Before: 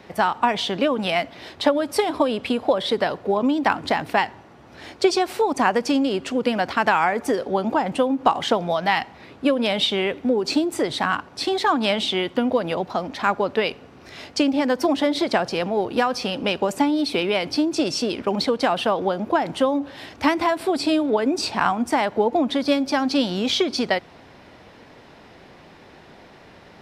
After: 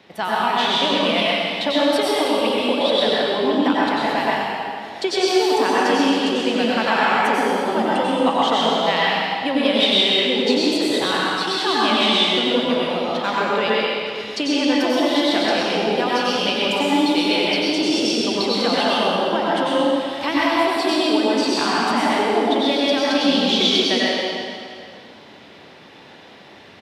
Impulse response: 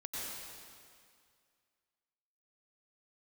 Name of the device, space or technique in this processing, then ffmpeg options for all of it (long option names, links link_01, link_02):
PA in a hall: -filter_complex "[0:a]asettb=1/sr,asplit=3[link_01][link_02][link_03];[link_01]atrim=end=3.574[link_04];[link_02]atrim=start=3.57:end=4.99,asetpts=PTS-STARTPTS,afade=type=in:duration=0.004:curve=qsin,afade=type=out:start_time=1.416:duration=0.004:curve=qsin,equalizer=frequency=3200:width_type=o:width=1.8:gain=-4.5[link_05];[link_03]atrim=start=4.986[link_06];[link_04][link_05]acrossfade=duration=0.004:curve1=hsin:curve2=qsin[link_07];[link_07][link_06]acrossfade=duration=0.004:curve1=qsin:curve2=hsin,highpass=110,equalizer=frequency=3300:width_type=o:width=1:gain=7.5,aecho=1:1:129:0.398[link_08];[1:a]atrim=start_sample=2205[link_09];[link_08][link_09]afir=irnorm=-1:irlink=0"